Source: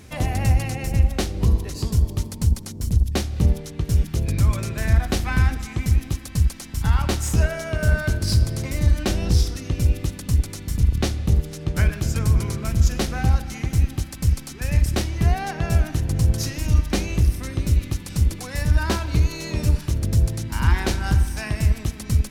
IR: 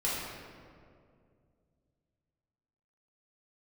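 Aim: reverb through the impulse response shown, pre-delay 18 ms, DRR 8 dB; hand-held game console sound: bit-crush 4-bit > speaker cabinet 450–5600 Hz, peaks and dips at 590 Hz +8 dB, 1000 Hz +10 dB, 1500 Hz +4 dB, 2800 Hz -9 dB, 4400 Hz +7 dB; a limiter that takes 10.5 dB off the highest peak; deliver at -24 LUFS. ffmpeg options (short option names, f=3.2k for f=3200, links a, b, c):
-filter_complex "[0:a]alimiter=limit=-15.5dB:level=0:latency=1,asplit=2[a][b];[1:a]atrim=start_sample=2205,adelay=18[c];[b][c]afir=irnorm=-1:irlink=0,volume=-16dB[d];[a][d]amix=inputs=2:normalize=0,acrusher=bits=3:mix=0:aa=0.000001,highpass=450,equalizer=f=590:t=q:w=4:g=8,equalizer=f=1k:t=q:w=4:g=10,equalizer=f=1.5k:t=q:w=4:g=4,equalizer=f=2.8k:t=q:w=4:g=-9,equalizer=f=4.4k:t=q:w=4:g=7,lowpass=f=5.6k:w=0.5412,lowpass=f=5.6k:w=1.3066,volume=2.5dB"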